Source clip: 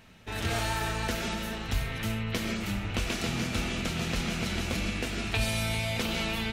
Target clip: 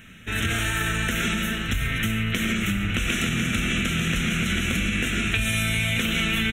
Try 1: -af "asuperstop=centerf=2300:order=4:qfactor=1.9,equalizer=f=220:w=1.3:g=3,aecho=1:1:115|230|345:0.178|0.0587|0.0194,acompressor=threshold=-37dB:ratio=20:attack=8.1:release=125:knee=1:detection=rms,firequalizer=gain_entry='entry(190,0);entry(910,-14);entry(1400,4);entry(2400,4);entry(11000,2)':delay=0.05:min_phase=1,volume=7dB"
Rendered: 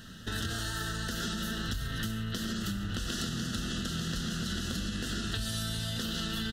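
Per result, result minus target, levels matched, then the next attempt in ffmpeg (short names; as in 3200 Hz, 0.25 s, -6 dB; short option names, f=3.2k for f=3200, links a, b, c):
compressor: peak gain reduction +9.5 dB; 2000 Hz band -5.0 dB
-af "asuperstop=centerf=2300:order=4:qfactor=1.9,equalizer=f=220:w=1.3:g=3,aecho=1:1:115|230|345:0.178|0.0587|0.0194,acompressor=threshold=-27dB:ratio=20:attack=8.1:release=125:knee=1:detection=rms,firequalizer=gain_entry='entry(190,0);entry(910,-14);entry(1400,4);entry(2400,4);entry(11000,2)':delay=0.05:min_phase=1,volume=7dB"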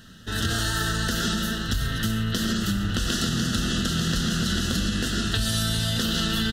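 2000 Hz band -5.0 dB
-af "asuperstop=centerf=4700:order=4:qfactor=1.9,equalizer=f=220:w=1.3:g=3,aecho=1:1:115|230|345:0.178|0.0587|0.0194,acompressor=threshold=-27dB:ratio=20:attack=8.1:release=125:knee=1:detection=rms,firequalizer=gain_entry='entry(190,0);entry(910,-14);entry(1400,4);entry(2400,4);entry(11000,2)':delay=0.05:min_phase=1,volume=7dB"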